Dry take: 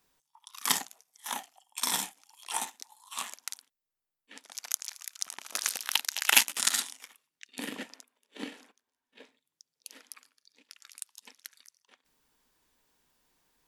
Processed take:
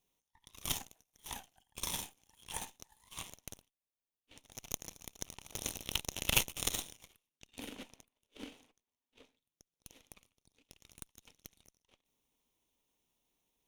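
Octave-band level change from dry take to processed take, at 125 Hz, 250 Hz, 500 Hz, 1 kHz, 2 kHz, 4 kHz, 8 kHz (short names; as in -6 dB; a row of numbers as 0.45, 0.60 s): n/a, -4.0 dB, -1.5 dB, -11.0 dB, -10.5 dB, -8.0 dB, -9.0 dB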